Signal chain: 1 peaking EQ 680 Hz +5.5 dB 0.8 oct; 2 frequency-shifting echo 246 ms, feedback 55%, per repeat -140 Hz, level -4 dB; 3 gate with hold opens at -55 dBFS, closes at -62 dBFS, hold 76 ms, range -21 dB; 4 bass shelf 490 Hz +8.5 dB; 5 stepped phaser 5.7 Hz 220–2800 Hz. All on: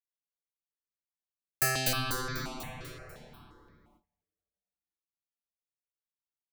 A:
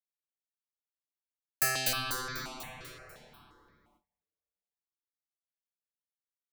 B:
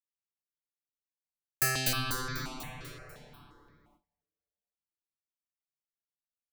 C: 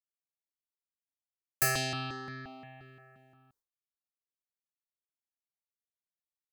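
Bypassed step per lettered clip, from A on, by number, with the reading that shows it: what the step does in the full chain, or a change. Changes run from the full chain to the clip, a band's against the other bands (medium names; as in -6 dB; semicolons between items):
4, 125 Hz band -7.0 dB; 1, 500 Hz band -3.5 dB; 2, momentary loudness spread change +2 LU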